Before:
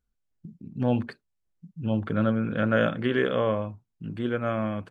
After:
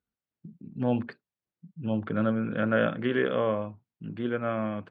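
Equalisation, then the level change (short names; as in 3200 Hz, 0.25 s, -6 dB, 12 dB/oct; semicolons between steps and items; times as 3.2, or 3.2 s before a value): BPF 120–3500 Hz; -1.5 dB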